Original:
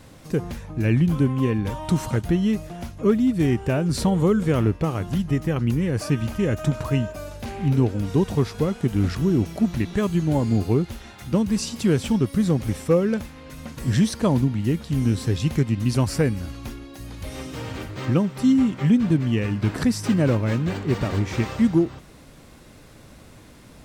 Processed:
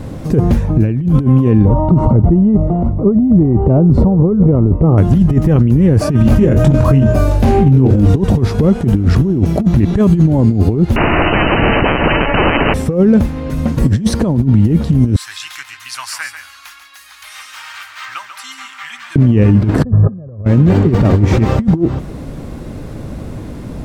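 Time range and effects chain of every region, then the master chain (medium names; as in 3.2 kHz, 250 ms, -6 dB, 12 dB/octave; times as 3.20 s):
1.65–4.98 s: transient shaper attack -12 dB, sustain +2 dB + Savitzky-Golay filter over 65 samples
6.22–8.17 s: hum notches 60/120/180/240/300/360/420/480/540 Hz + doubling 23 ms -5 dB + compressor with a negative ratio -23 dBFS
10.96–12.74 s: frequency inversion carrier 2.8 kHz + spectrum-flattening compressor 10:1
15.16–19.16 s: inverse Chebyshev high-pass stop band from 490 Hz, stop band 50 dB + delay 141 ms -9 dB
19.83–20.45 s: brick-wall FIR low-pass 1.8 kHz + tilt shelf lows +8 dB, about 1.2 kHz + comb 1.7 ms, depth 70%
whole clip: tilt shelf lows +8 dB; compressor with a negative ratio -17 dBFS, ratio -0.5; loudness maximiser +11.5 dB; trim -1 dB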